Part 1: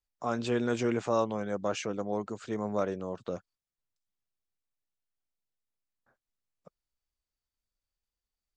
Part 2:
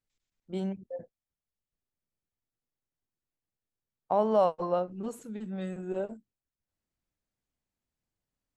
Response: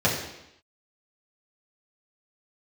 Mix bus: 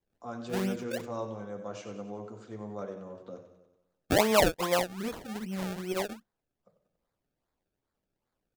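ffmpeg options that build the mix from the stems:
-filter_complex "[0:a]volume=-12.5dB,asplit=3[link_01][link_02][link_03];[link_02]volume=-18dB[link_04];[link_03]volume=-9dB[link_05];[1:a]highshelf=frequency=2800:gain=7.5,acrusher=samples=30:mix=1:aa=0.000001:lfo=1:lforange=30:lforate=2.5,volume=1dB[link_06];[2:a]atrim=start_sample=2205[link_07];[link_04][link_07]afir=irnorm=-1:irlink=0[link_08];[link_05]aecho=0:1:94|188|282|376|470|564|658|752|846:1|0.58|0.336|0.195|0.113|0.0656|0.0381|0.0221|0.0128[link_09];[link_01][link_06][link_08][link_09]amix=inputs=4:normalize=0"

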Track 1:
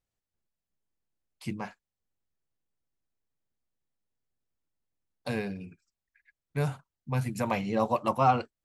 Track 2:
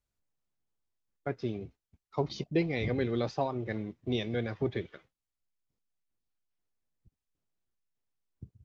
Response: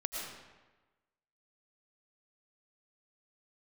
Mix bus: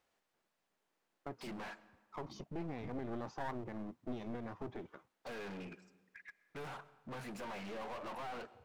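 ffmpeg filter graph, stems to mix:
-filter_complex "[0:a]equalizer=frequency=110:width_type=o:width=0.77:gain=-5,acompressor=threshold=-32dB:ratio=4,asplit=2[link_01][link_02];[link_02]highpass=frequency=720:poles=1,volume=35dB,asoftclip=type=tanh:threshold=-23.5dB[link_03];[link_01][link_03]amix=inputs=2:normalize=0,lowpass=frequency=1400:poles=1,volume=-6dB,volume=-12dB,asplit=3[link_04][link_05][link_06];[link_05]volume=-18dB[link_07];[1:a]alimiter=level_in=3dB:limit=-24dB:level=0:latency=1:release=89,volume=-3dB,equalizer=frequency=250:width_type=o:width=1:gain=5,equalizer=frequency=500:width_type=o:width=1:gain=-4,equalizer=frequency=1000:width_type=o:width=1:gain=11,equalizer=frequency=2000:width_type=o:width=1:gain=-8,equalizer=frequency=4000:width_type=o:width=1:gain=-11,volume=-3.5dB[link_08];[link_06]apad=whole_len=381380[link_09];[link_08][link_09]sidechaincompress=threshold=-56dB:ratio=8:attack=16:release=179[link_10];[2:a]atrim=start_sample=2205[link_11];[link_07][link_11]afir=irnorm=-1:irlink=0[link_12];[link_04][link_10][link_12]amix=inputs=3:normalize=0,lowshelf=frequency=120:gain=-9,aeval=exprs='clip(val(0),-1,0.00447)':channel_layout=same"

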